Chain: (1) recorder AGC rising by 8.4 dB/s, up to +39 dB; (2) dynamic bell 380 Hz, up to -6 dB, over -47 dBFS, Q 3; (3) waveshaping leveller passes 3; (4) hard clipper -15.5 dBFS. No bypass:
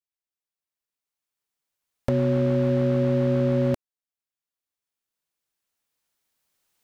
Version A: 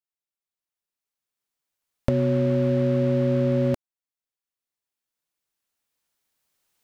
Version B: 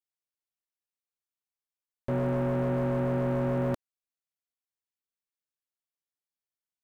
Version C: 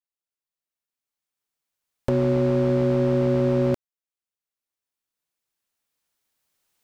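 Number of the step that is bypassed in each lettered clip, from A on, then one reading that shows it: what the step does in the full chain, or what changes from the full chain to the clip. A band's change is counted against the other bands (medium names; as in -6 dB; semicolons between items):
4, distortion -22 dB; 1, crest factor change -2.0 dB; 2, loudness change +1.0 LU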